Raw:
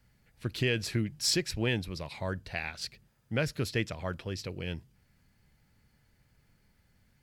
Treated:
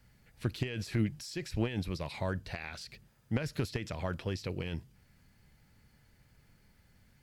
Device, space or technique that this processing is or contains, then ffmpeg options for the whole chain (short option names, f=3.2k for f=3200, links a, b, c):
de-esser from a sidechain: -filter_complex "[0:a]asplit=2[a][b];[b]highpass=f=5.5k:p=1,apad=whole_len=318473[c];[a][c]sidechaincompress=threshold=-49dB:ratio=8:attack=3.2:release=43,volume=3dB"